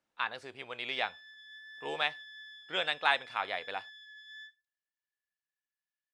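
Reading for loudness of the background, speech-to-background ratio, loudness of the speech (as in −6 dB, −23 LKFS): −49.0 LKFS, 15.0 dB, −34.0 LKFS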